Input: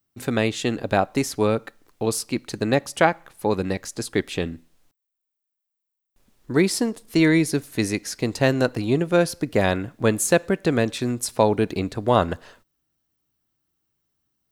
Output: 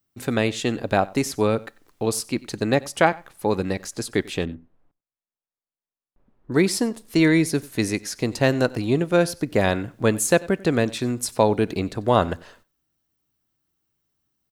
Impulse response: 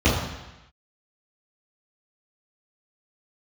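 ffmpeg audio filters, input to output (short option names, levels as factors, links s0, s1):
-filter_complex "[0:a]asettb=1/sr,asplit=3[s0][s1][s2];[s0]atrim=end=4.454[s3];[s1]atrim=start=4.45:end=6.52,asetpts=PTS-STARTPTS,afade=t=in:d=0.004:c=qsin,afade=t=out:st=2.066:d=0.004:c=qsin,lowpass=1200[s4];[s2]atrim=start=6.516[s5];[s3][s4]acrossfade=d=0.004:c1=hsin:c2=qsin[s6];[s6][s5]acrossfade=d=0.004:c1=qsin:c2=hsin,aecho=1:1:93:0.0794"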